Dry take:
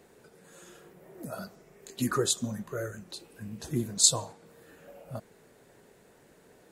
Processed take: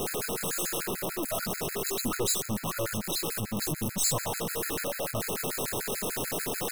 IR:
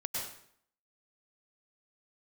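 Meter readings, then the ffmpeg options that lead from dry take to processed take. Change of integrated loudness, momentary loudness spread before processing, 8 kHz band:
-1.5 dB, 23 LU, 0.0 dB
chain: -af "aeval=exprs='val(0)+0.5*0.0708*sgn(val(0))':c=same,highpass=43,equalizer=f=11k:t=o:w=0.77:g=3.5,aeval=exprs='(tanh(15.8*val(0)+0.45)-tanh(0.45))/15.8':c=same,crystalizer=i=0.5:c=0,afftfilt=real='re*gt(sin(2*PI*6.8*pts/sr)*(1-2*mod(floor(b*sr/1024/1300),2)),0)':imag='im*gt(sin(2*PI*6.8*pts/sr)*(1-2*mod(floor(b*sr/1024/1300),2)),0)':win_size=1024:overlap=0.75"

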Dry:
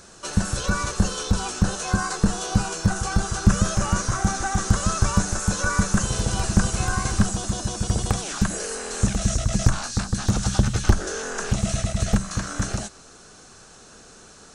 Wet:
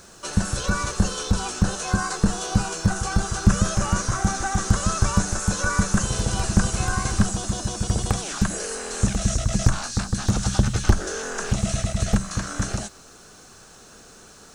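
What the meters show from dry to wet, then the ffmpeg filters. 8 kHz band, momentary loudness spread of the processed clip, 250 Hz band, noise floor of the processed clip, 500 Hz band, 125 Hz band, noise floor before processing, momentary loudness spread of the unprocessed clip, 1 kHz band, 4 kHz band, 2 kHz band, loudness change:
0.0 dB, 5 LU, 0.0 dB, -48 dBFS, 0.0 dB, 0.0 dB, -48 dBFS, 5 LU, 0.0 dB, 0.0 dB, 0.0 dB, 0.0 dB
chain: -af "acrusher=bits=9:mix=0:aa=0.000001"

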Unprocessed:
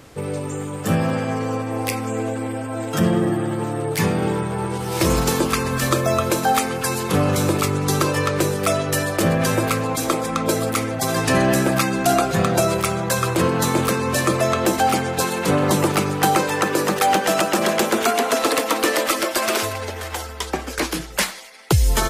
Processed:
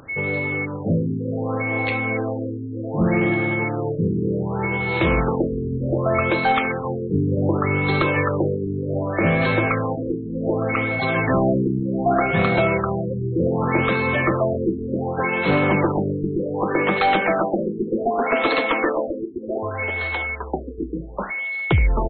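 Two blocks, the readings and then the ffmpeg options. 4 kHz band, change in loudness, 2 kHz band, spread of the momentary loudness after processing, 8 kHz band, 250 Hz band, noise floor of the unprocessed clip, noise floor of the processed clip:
-9.0 dB, -1.0 dB, +2.0 dB, 7 LU, under -40 dB, -0.5 dB, -32 dBFS, -30 dBFS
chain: -af "aecho=1:1:71:0.126,aeval=exprs='val(0)+0.0631*sin(2*PI*2200*n/s)':c=same,aeval=exprs='clip(val(0),-1,0.224)':c=same,areverse,acompressor=mode=upward:threshold=-32dB:ratio=2.5,areverse,afftfilt=real='re*lt(b*sr/1024,450*pow(4400/450,0.5+0.5*sin(2*PI*0.66*pts/sr)))':imag='im*lt(b*sr/1024,450*pow(4400/450,0.5+0.5*sin(2*PI*0.66*pts/sr)))':win_size=1024:overlap=0.75"

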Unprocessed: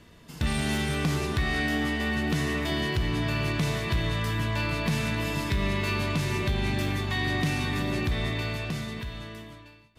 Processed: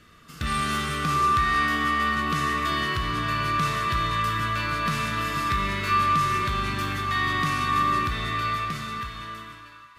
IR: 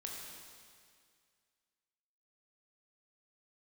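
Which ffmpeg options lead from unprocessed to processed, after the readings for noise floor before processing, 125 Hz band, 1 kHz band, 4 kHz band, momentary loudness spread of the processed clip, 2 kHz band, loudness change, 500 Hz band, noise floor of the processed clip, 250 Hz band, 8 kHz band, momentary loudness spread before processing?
-52 dBFS, -3.0 dB, +13.0 dB, +2.0 dB, 8 LU, +4.0 dB, +3.5 dB, -3.5 dB, -47 dBFS, -3.0 dB, +1.5 dB, 6 LU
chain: -filter_complex "[0:a]asplit=2[a][b];[b]highpass=f=1.2k:t=q:w=9.9[c];[1:a]atrim=start_sample=2205,asetrate=31311,aresample=44100[d];[c][d]afir=irnorm=-1:irlink=0,volume=-2.5dB[e];[a][e]amix=inputs=2:normalize=0,volume=-3dB"

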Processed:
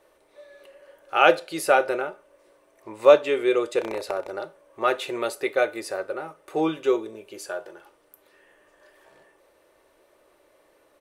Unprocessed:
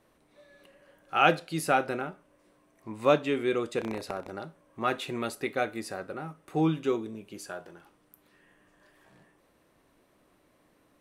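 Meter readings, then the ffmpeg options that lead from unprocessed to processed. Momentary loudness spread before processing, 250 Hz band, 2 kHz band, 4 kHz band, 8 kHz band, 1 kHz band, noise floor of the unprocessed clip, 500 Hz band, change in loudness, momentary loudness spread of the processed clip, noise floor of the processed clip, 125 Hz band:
18 LU, +1.0 dB, +5.0 dB, +4.5 dB, +4.5 dB, +4.0 dB, -67 dBFS, +8.5 dB, +6.0 dB, 17 LU, -62 dBFS, -9.5 dB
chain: -af "lowshelf=f=330:t=q:w=3:g=-8,aecho=1:1:3.4:0.38,volume=4dB"

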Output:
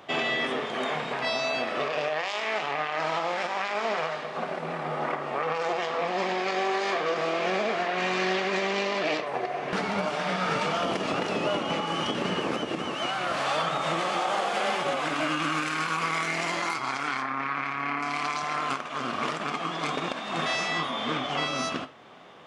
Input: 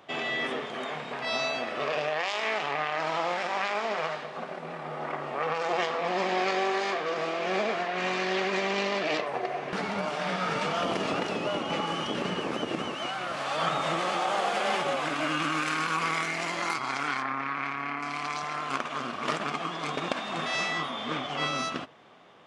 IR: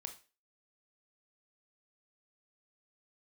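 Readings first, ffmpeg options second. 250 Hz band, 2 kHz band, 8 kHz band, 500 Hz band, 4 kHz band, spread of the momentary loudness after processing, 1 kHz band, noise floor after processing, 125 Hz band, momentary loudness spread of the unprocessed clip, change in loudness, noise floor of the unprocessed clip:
+2.0 dB, +1.5 dB, +1.5 dB, +1.5 dB, +1.5 dB, 4 LU, +1.5 dB, -35 dBFS, +2.0 dB, 5 LU, +1.5 dB, -39 dBFS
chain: -filter_complex "[0:a]alimiter=limit=-22.5dB:level=0:latency=1:release=403,asplit=2[a][b];[1:a]atrim=start_sample=2205[c];[b][c]afir=irnorm=-1:irlink=0,volume=3dB[d];[a][d]amix=inputs=2:normalize=0"

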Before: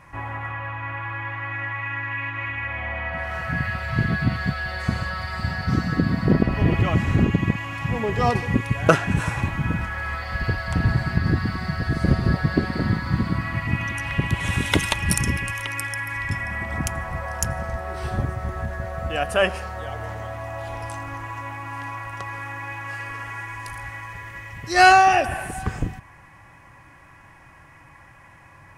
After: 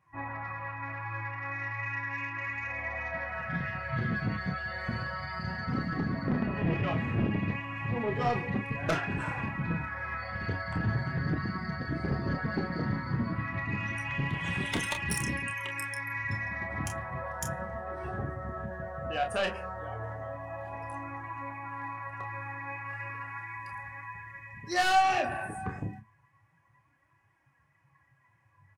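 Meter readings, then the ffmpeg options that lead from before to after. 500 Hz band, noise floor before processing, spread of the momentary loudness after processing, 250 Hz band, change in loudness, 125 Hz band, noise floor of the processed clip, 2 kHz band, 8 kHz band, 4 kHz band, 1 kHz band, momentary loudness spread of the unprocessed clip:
-9.0 dB, -49 dBFS, 9 LU, -9.0 dB, -9.0 dB, -10.0 dB, -68 dBFS, -8.5 dB, -10.5 dB, -9.5 dB, -9.0 dB, 12 LU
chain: -filter_complex "[0:a]afftdn=nr=18:nf=-36,highpass=110,acontrast=51,asoftclip=type=tanh:threshold=-11dB,flanger=delay=2.3:depth=8.6:regen=60:speed=0.33:shape=triangular,asplit=2[a][b];[b]aecho=0:1:29|43:0.447|0.188[c];[a][c]amix=inputs=2:normalize=0,volume=-8dB"

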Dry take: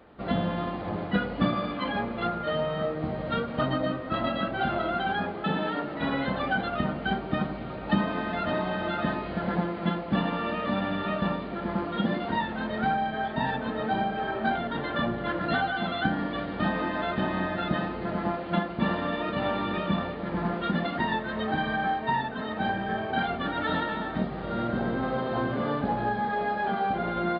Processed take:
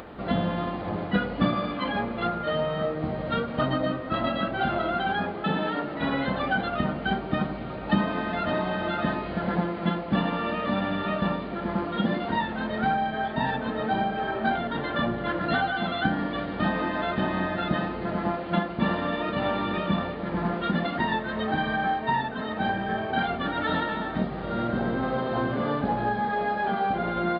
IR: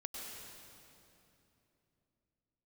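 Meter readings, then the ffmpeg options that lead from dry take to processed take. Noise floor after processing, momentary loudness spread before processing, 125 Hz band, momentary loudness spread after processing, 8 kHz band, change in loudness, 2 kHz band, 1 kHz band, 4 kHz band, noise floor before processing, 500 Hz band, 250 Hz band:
-34 dBFS, 3 LU, +1.5 dB, 3 LU, n/a, +1.5 dB, +1.5 dB, +1.5 dB, +1.5 dB, -36 dBFS, +1.5 dB, +1.5 dB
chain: -af "acompressor=mode=upward:threshold=-35dB:ratio=2.5,volume=1.5dB"

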